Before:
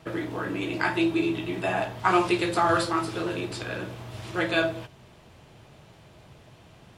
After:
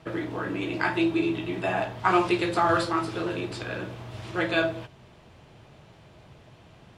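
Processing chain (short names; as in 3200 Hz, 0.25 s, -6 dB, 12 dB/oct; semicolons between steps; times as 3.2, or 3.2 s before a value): high shelf 8300 Hz -10.5 dB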